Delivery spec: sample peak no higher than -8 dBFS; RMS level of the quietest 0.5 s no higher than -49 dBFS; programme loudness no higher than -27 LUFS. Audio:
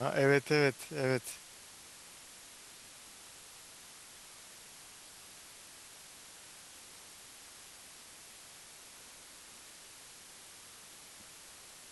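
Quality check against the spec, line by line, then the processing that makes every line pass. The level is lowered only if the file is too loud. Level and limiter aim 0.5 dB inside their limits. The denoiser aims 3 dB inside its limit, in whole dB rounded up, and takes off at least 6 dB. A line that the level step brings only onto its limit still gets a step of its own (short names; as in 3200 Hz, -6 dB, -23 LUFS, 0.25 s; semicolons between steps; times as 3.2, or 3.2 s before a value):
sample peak -13.0 dBFS: OK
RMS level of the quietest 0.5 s -54 dBFS: OK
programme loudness -31.5 LUFS: OK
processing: none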